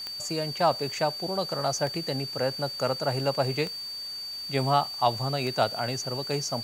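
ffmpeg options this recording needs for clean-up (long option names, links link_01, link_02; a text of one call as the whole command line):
ffmpeg -i in.wav -af "adeclick=threshold=4,bandreject=frequency=4600:width=30,afwtdn=0.0032" out.wav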